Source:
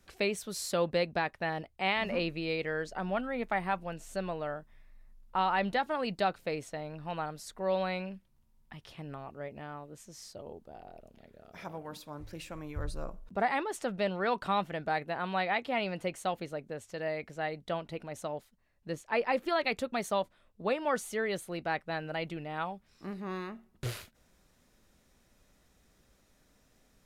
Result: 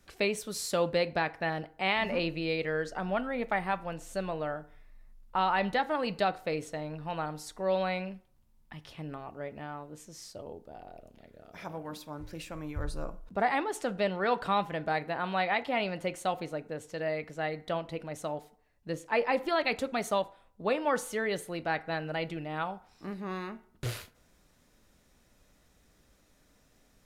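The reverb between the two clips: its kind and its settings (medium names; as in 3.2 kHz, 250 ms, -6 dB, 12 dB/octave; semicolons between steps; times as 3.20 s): FDN reverb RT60 0.56 s, low-frequency decay 0.75×, high-frequency decay 0.6×, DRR 13 dB; trim +1.5 dB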